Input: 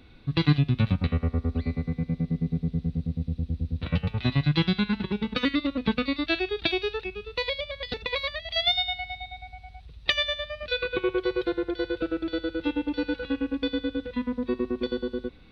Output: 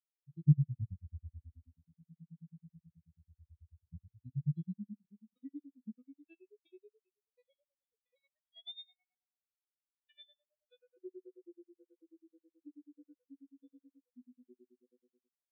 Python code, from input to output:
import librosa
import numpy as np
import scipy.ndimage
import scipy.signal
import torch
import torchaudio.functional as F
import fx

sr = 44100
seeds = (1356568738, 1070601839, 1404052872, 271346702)

y = fx.spectral_expand(x, sr, expansion=4.0)
y = y * librosa.db_to_amplitude(-7.0)